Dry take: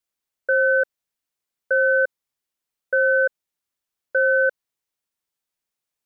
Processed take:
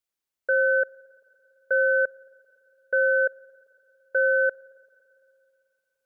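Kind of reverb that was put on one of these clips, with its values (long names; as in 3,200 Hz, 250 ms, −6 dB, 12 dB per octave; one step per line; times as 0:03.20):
spring reverb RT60 3 s, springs 43/56 ms, chirp 65 ms, DRR 19.5 dB
level −3 dB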